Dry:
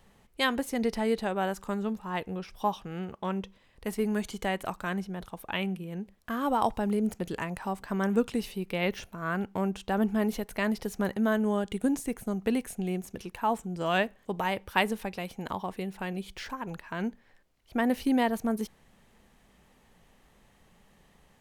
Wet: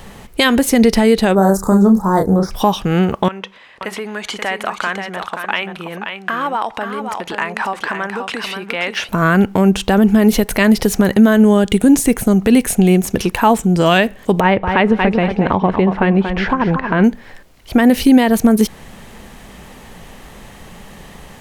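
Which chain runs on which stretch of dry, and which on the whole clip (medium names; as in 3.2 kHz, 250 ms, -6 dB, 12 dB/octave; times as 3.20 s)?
1.35–2.51 s: Butterworth band-stop 2.7 kHz, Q 0.59 + doubling 31 ms -5 dB
3.28–9.09 s: compression, threshold -35 dBFS + band-pass filter 1.7 kHz, Q 0.73 + delay 530 ms -7 dB
14.40–17.04 s: low-pass 1.9 kHz + feedback delay 232 ms, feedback 28%, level -10 dB
whole clip: dynamic bell 930 Hz, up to -5 dB, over -40 dBFS, Q 0.97; compression 1.5:1, threshold -36 dBFS; loudness maximiser +25 dB; trim -1 dB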